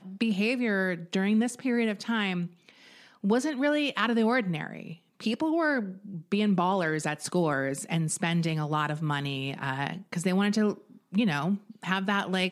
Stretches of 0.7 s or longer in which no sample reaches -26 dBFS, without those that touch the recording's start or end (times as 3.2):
2.43–3.24